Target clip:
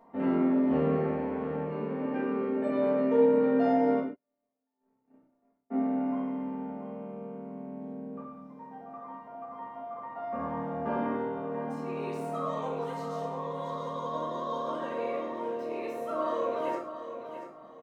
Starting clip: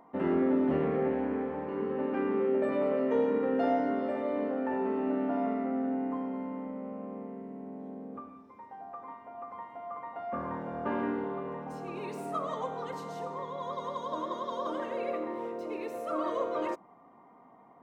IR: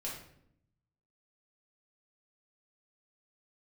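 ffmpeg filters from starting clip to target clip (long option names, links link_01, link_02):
-filter_complex "[0:a]aecho=1:1:684|1368|2052:0.316|0.0949|0.0285,asplit=3[link_01][link_02][link_03];[link_01]afade=type=out:start_time=3.99:duration=0.02[link_04];[link_02]agate=range=-55dB:threshold=-24dB:ratio=16:detection=peak,afade=type=in:start_time=3.99:duration=0.02,afade=type=out:start_time=5.7:duration=0.02[link_05];[link_03]afade=type=in:start_time=5.7:duration=0.02[link_06];[link_04][link_05][link_06]amix=inputs=3:normalize=0[link_07];[1:a]atrim=start_sample=2205,afade=type=out:start_time=0.2:duration=0.01,atrim=end_sample=9261[link_08];[link_07][link_08]afir=irnorm=-1:irlink=0"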